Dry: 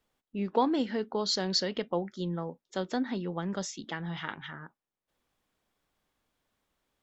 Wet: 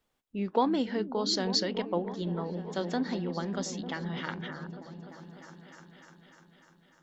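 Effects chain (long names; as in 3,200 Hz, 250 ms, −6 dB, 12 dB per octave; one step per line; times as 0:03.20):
echo whose low-pass opens from repeat to repeat 299 ms, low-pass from 200 Hz, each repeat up 1 octave, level −6 dB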